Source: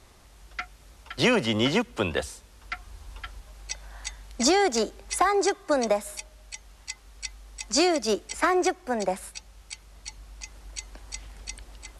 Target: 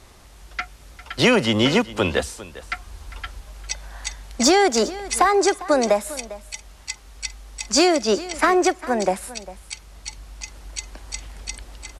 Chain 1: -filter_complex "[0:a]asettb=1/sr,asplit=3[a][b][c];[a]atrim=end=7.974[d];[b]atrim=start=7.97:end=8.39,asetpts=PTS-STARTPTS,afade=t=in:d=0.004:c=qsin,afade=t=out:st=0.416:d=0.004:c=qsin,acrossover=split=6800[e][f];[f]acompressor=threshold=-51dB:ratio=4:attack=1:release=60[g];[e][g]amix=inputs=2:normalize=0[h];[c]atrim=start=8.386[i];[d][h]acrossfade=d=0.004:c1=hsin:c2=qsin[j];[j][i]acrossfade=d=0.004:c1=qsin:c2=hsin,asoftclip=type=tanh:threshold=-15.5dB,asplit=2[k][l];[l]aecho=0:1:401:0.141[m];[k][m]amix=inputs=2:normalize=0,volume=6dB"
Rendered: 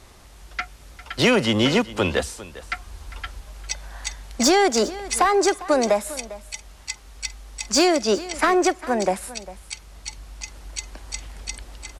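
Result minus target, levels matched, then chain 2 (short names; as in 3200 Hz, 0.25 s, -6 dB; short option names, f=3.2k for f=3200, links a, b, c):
soft clip: distortion +10 dB
-filter_complex "[0:a]asettb=1/sr,asplit=3[a][b][c];[a]atrim=end=7.974[d];[b]atrim=start=7.97:end=8.39,asetpts=PTS-STARTPTS,afade=t=in:d=0.004:c=qsin,afade=t=out:st=0.416:d=0.004:c=qsin,acrossover=split=6800[e][f];[f]acompressor=threshold=-51dB:ratio=4:attack=1:release=60[g];[e][g]amix=inputs=2:normalize=0[h];[c]atrim=start=8.386[i];[d][h]acrossfade=d=0.004:c1=hsin:c2=qsin[j];[j][i]acrossfade=d=0.004:c1=qsin:c2=hsin,asoftclip=type=tanh:threshold=-9.5dB,asplit=2[k][l];[l]aecho=0:1:401:0.141[m];[k][m]amix=inputs=2:normalize=0,volume=6dB"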